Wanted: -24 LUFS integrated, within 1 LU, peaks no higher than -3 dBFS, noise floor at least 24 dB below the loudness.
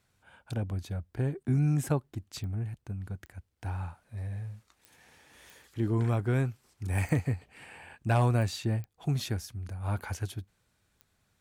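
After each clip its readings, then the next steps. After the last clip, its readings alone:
clicks found 8; loudness -32.0 LUFS; peak level -15.0 dBFS; loudness target -24.0 LUFS
-> de-click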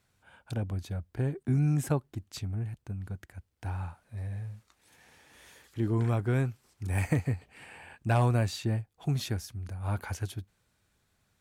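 clicks found 0; loudness -32.0 LUFS; peak level -15.0 dBFS; loudness target -24.0 LUFS
-> trim +8 dB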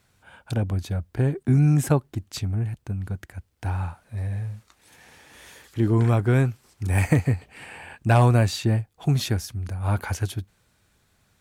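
loudness -24.0 LUFS; peak level -7.0 dBFS; noise floor -67 dBFS

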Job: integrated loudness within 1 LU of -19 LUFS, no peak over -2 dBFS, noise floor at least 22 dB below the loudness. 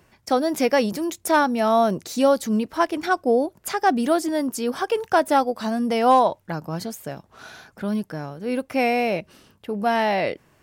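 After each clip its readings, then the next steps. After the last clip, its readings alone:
loudness -22.0 LUFS; peak level -7.5 dBFS; loudness target -19.0 LUFS
-> trim +3 dB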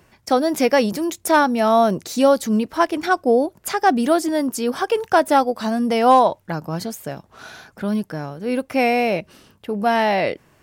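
loudness -19.0 LUFS; peak level -4.5 dBFS; noise floor -58 dBFS

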